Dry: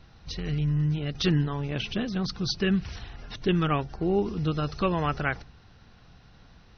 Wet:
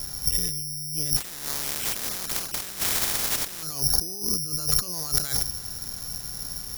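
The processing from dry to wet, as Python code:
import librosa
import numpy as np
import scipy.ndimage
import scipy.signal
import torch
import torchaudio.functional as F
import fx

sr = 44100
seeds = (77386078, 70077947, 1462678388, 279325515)

y = fx.spec_flatten(x, sr, power=0.18, at=(1.16, 3.62), fade=0.02)
y = fx.over_compress(y, sr, threshold_db=-38.0, ratio=-1.0)
y = (np.kron(scipy.signal.resample_poly(y, 1, 8), np.eye(8)[0]) * 8)[:len(y)]
y = F.gain(torch.from_numpy(y), 1.5).numpy()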